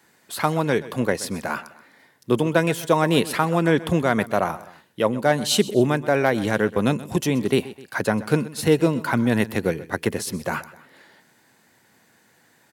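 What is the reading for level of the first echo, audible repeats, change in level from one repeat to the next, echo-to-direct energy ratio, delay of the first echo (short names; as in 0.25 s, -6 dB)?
-17.5 dB, 2, -6.0 dB, -16.5 dB, 0.128 s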